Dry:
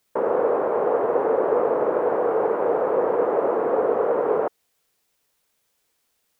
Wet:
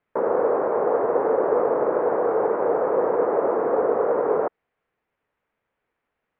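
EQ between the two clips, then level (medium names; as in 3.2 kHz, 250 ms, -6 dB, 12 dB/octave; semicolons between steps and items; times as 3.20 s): low-pass 2.2 kHz 24 dB/octave; 0.0 dB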